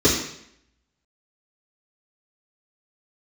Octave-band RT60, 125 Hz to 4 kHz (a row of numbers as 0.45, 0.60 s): 0.70, 0.70, 0.70, 0.70, 0.75, 0.70 s